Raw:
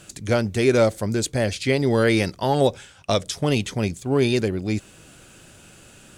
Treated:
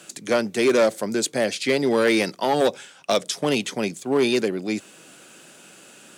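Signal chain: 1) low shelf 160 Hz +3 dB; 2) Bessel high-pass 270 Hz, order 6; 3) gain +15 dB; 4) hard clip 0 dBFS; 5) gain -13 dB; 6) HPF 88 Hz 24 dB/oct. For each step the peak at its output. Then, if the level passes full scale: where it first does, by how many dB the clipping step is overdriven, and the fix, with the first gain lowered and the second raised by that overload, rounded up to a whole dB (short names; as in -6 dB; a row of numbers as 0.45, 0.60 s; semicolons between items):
-6.0, -7.0, +8.0, 0.0, -13.0, -9.0 dBFS; step 3, 8.0 dB; step 3 +7 dB, step 5 -5 dB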